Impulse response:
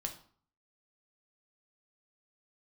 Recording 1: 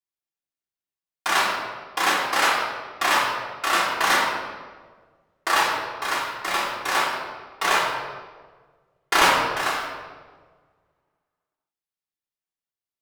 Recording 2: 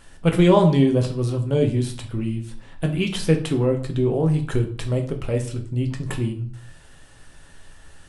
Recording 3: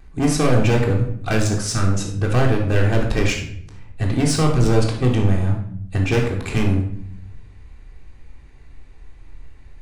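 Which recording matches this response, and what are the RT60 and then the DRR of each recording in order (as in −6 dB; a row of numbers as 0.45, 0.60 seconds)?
2; 1.5, 0.50, 0.65 seconds; −10.0, 3.5, −11.0 decibels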